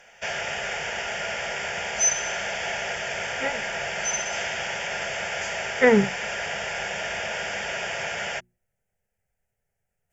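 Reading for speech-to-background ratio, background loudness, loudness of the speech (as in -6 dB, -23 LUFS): 5.0 dB, -27.5 LUFS, -22.5 LUFS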